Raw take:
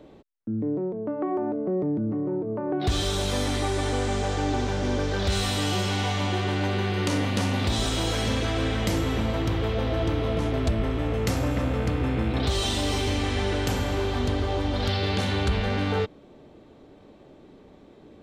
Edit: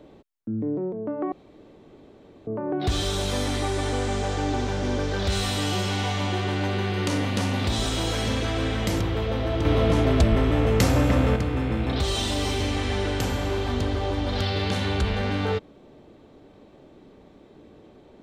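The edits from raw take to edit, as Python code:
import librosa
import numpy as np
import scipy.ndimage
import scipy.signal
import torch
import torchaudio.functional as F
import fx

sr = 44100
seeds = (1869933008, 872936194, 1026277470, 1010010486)

y = fx.edit(x, sr, fx.room_tone_fill(start_s=1.32, length_s=1.15),
    fx.cut(start_s=9.0, length_s=0.47),
    fx.clip_gain(start_s=10.12, length_s=1.71, db=5.5), tone=tone)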